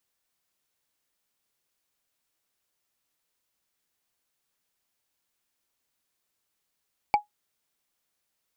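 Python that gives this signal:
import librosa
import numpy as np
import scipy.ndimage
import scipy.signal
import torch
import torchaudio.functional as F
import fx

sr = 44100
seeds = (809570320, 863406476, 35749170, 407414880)

y = fx.strike_wood(sr, length_s=0.45, level_db=-12.5, body='bar', hz=833.0, decay_s=0.13, tilt_db=8.5, modes=5)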